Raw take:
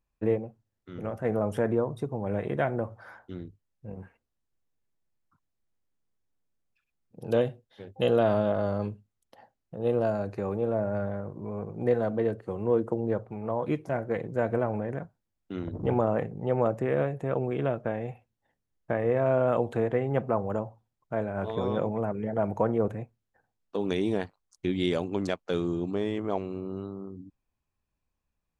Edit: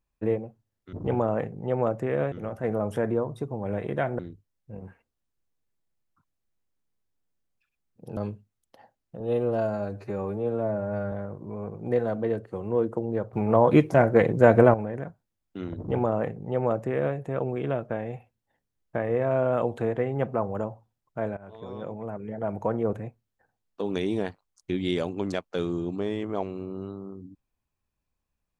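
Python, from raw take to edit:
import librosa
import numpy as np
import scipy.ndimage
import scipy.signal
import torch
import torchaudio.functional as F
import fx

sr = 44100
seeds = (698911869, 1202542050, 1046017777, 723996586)

y = fx.edit(x, sr, fx.cut(start_s=2.8, length_s=0.54),
    fx.cut(start_s=7.32, length_s=1.44),
    fx.stretch_span(start_s=9.79, length_s=1.28, factor=1.5),
    fx.clip_gain(start_s=13.28, length_s=1.41, db=11.0),
    fx.duplicate(start_s=15.72, length_s=1.39, to_s=0.93),
    fx.fade_in_from(start_s=21.32, length_s=1.58, floor_db=-16.5), tone=tone)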